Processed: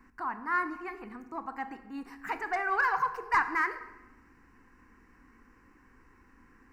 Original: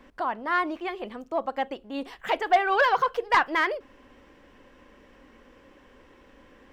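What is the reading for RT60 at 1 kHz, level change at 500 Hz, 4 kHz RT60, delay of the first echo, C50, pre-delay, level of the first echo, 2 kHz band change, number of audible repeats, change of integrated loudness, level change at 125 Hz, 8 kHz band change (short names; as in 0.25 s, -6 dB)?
1.0 s, -14.0 dB, 0.80 s, none, 12.0 dB, 24 ms, none, -3.5 dB, none, -5.5 dB, n/a, n/a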